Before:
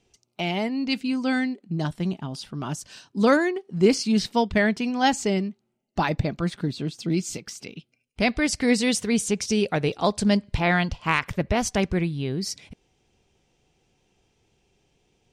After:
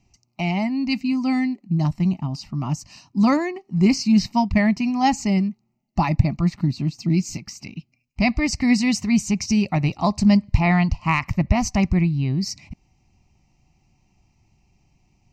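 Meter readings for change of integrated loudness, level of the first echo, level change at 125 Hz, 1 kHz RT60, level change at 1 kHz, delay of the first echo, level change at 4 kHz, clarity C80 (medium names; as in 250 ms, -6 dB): +3.5 dB, no echo, +7.5 dB, no reverb, +2.5 dB, no echo, -1.0 dB, no reverb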